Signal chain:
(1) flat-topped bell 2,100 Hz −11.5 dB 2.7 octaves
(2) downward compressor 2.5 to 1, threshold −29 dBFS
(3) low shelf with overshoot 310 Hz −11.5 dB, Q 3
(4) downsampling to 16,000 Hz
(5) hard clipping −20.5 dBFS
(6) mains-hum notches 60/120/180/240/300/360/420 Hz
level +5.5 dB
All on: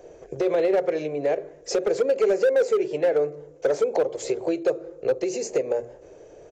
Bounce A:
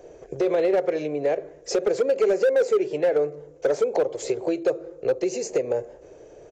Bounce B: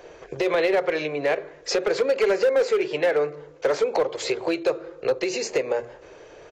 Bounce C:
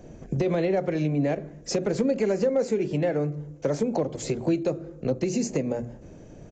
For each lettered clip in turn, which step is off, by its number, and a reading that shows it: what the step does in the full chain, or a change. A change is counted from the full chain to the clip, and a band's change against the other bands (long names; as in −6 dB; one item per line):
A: 6, change in crest factor −3.0 dB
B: 1, 4 kHz band +8.5 dB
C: 3, 125 Hz band +17.5 dB